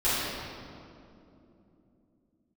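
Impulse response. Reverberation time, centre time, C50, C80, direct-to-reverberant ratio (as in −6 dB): 2.9 s, 156 ms, −3.5 dB, −1.0 dB, −15.5 dB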